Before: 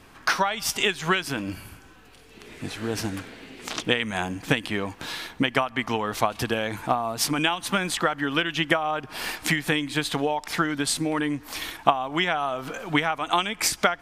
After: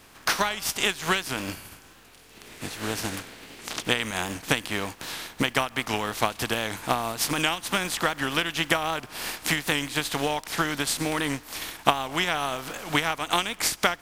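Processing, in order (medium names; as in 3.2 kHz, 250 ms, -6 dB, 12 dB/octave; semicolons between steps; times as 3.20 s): spectral contrast reduction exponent 0.59; warped record 78 rpm, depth 100 cents; trim -1.5 dB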